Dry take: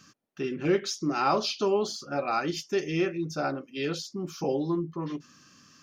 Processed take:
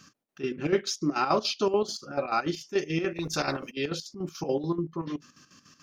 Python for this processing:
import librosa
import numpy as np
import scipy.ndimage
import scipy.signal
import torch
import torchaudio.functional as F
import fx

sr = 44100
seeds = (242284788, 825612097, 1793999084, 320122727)

y = fx.chopper(x, sr, hz=6.9, depth_pct=65, duty_pct=60)
y = fx.spectral_comp(y, sr, ratio=2.0, at=(3.15, 3.7), fade=0.02)
y = y * 10.0 ** (1.5 / 20.0)